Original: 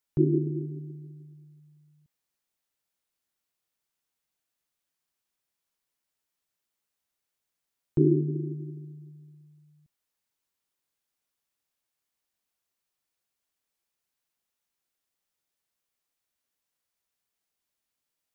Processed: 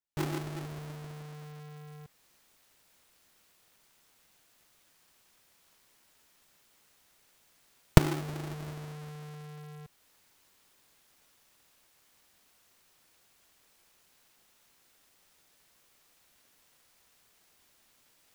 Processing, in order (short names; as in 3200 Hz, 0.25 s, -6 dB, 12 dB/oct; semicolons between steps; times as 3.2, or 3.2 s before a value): half-waves squared off; recorder AGC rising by 16 dB/s; gain -14 dB